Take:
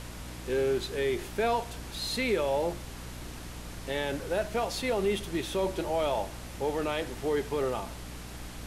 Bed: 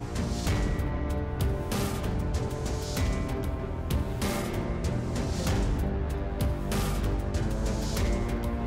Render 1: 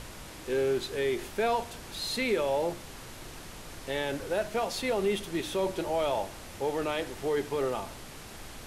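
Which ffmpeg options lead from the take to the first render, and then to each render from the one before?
-af "bandreject=f=60:t=h:w=4,bandreject=f=120:t=h:w=4,bandreject=f=180:t=h:w=4,bandreject=f=240:t=h:w=4,bandreject=f=300:t=h:w=4"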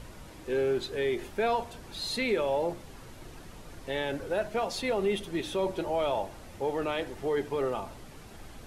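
-af "afftdn=nr=8:nf=-45"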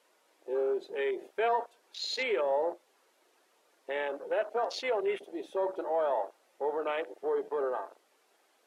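-af "highpass=f=390:w=0.5412,highpass=f=390:w=1.3066,afwtdn=0.0141"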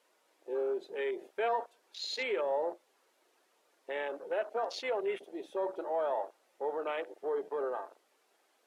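-af "volume=-3dB"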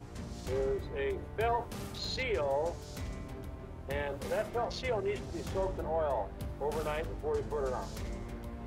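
-filter_complex "[1:a]volume=-12.5dB[a];[0:a][a]amix=inputs=2:normalize=0"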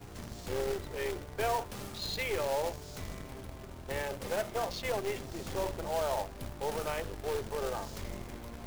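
-filter_complex "[0:a]acrossover=split=440[a][b];[a]aeval=exprs='clip(val(0),-1,0.00335)':c=same[c];[c][b]amix=inputs=2:normalize=0,acrusher=bits=2:mode=log:mix=0:aa=0.000001"

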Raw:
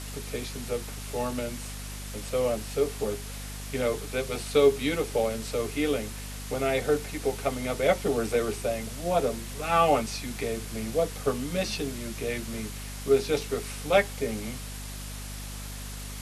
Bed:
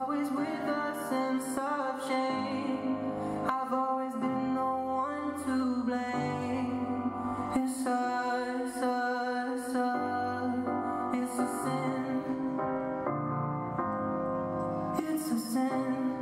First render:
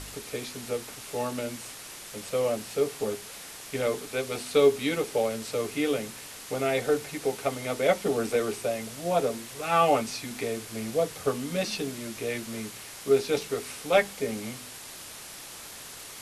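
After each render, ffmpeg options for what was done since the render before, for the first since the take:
-af "bandreject=f=50:t=h:w=4,bandreject=f=100:t=h:w=4,bandreject=f=150:t=h:w=4,bandreject=f=200:t=h:w=4,bandreject=f=250:t=h:w=4"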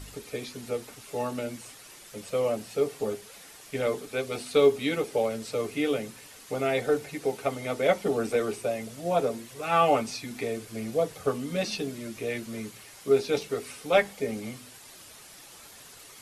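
-af "afftdn=nr=8:nf=-43"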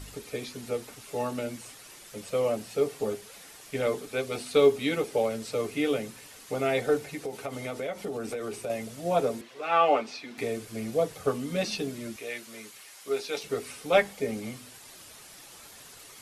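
-filter_complex "[0:a]asettb=1/sr,asplit=3[a][b][c];[a]atrim=end=6.984[d];[b]atrim=start=6.98:end=8.7,asetpts=PTS-STARTPTS,afade=t=in:d=0.004:c=qsin,afade=t=out:st=1.716:d=0.004:c=qsin,acompressor=threshold=-30dB:ratio=6:attack=3.2:release=140:knee=1:detection=peak[e];[c]atrim=start=8.696[f];[d][e]acrossfade=d=0.004:c1=hsin:c2=qsin[g];[g][f]acrossfade=d=0.004:c1=qsin:c2=hsin,asettb=1/sr,asplit=3[h][i][j];[h]atrim=end=9.414[k];[i]atrim=start=9.41:end=10.38,asetpts=PTS-STARTPTS,afade=t=in:d=0.004:c=qsin,afade=t=out:st=0.966:d=0.004:c=qsin,acrossover=split=250 4800:gain=0.0794 1 0.141[l][m][n];[l][m][n]amix=inputs=3:normalize=0[o];[j]atrim=start=10.376[p];[k][o]acrossfade=d=0.004:c1=hsin:c2=qsin[q];[q][p]acrossfade=d=0.004:c1=qsin:c2=hsin,asettb=1/sr,asplit=3[r][s][t];[r]atrim=end=12.164[u];[s]atrim=start=12.16:end=13.44,asetpts=PTS-STARTPTS,afade=t=in:d=0.004:c=qsin,afade=t=out:st=1.276:d=0.004:c=qsin,highpass=f=920:p=1[v];[t]atrim=start=13.436[w];[u][v]acrossfade=d=0.004:c1=hsin:c2=qsin[x];[x][w]acrossfade=d=0.004:c1=qsin:c2=hsin"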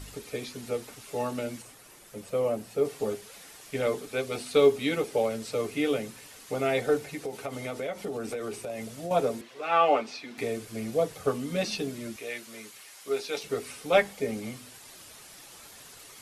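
-filter_complex "[0:a]asettb=1/sr,asplit=3[a][b][c];[a]atrim=end=1.624[d];[b]atrim=start=1.62:end=2.85,asetpts=PTS-STARTPTS,afade=t=in:d=0.004:c=qsin,afade=t=out:st=1.226:d=0.004:c=qsin,equalizer=f=4.4k:t=o:w=2.8:g=-6.5[e];[c]atrim=start=2.846[f];[d][e]acrossfade=d=0.004:c1=hsin:c2=qsin[g];[g][f]acrossfade=d=0.004:c1=qsin:c2=hsin,asettb=1/sr,asplit=3[h][i][j];[h]atrim=end=8.584[k];[i]atrim=start=8.58:end=9.11,asetpts=PTS-STARTPTS,afade=t=in:d=0.004:c=qsin,afade=t=out:st=0.526:d=0.004:c=qsin,acompressor=threshold=-31dB:ratio=6:attack=3.2:release=140:knee=1:detection=peak[l];[j]atrim=start=9.106[m];[k][l]acrossfade=d=0.004:c1=hsin:c2=qsin[n];[n][m]acrossfade=d=0.004:c1=qsin:c2=hsin"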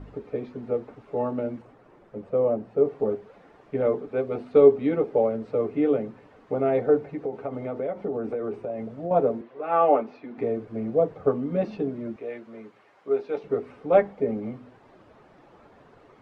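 -af "lowpass=1.2k,equalizer=f=350:w=0.43:g=5.5"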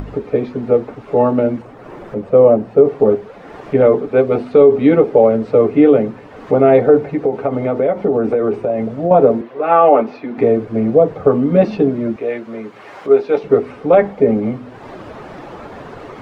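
-af "acompressor=mode=upward:threshold=-38dB:ratio=2.5,alimiter=level_in=14dB:limit=-1dB:release=50:level=0:latency=1"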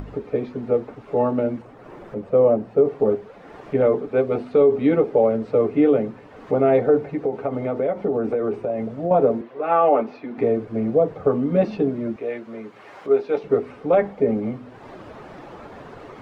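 -af "volume=-7dB"

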